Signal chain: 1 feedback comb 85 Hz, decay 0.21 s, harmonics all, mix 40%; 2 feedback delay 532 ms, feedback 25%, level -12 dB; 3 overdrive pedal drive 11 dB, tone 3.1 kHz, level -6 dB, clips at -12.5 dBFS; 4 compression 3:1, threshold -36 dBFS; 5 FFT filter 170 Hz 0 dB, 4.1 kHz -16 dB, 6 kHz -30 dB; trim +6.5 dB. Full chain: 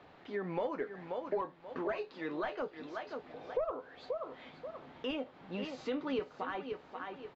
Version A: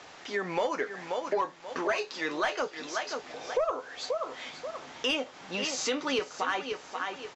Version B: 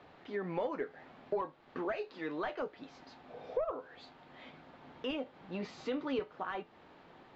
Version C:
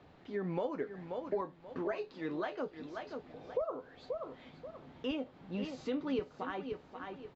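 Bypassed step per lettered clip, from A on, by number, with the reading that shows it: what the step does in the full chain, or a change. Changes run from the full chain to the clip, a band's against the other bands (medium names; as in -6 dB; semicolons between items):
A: 5, 4 kHz band +10.0 dB; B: 2, momentary loudness spread change +10 LU; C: 3, momentary loudness spread change +2 LU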